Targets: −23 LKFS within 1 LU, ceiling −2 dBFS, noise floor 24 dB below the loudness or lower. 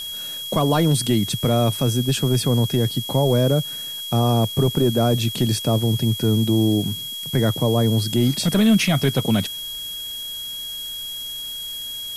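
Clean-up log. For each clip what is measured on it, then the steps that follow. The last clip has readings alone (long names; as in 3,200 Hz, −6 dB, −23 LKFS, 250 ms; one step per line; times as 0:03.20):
interfering tone 3,300 Hz; level of the tone −29 dBFS; background noise floor −31 dBFS; target noise floor −45 dBFS; integrated loudness −20.5 LKFS; sample peak −7.5 dBFS; target loudness −23.0 LKFS
→ notch filter 3,300 Hz, Q 30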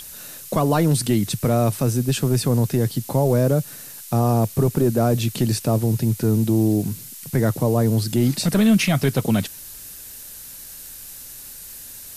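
interfering tone none found; background noise floor −39 dBFS; target noise floor −45 dBFS
→ noise reduction from a noise print 6 dB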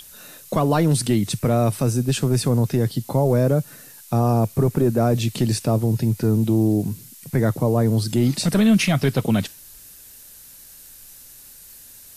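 background noise floor −45 dBFS; integrated loudness −20.5 LKFS; sample peak −8.0 dBFS; target loudness −23.0 LKFS
→ level −2.5 dB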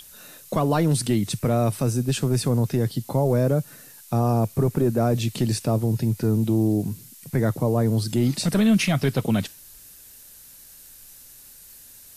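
integrated loudness −23.0 LKFS; sample peak −10.5 dBFS; background noise floor −47 dBFS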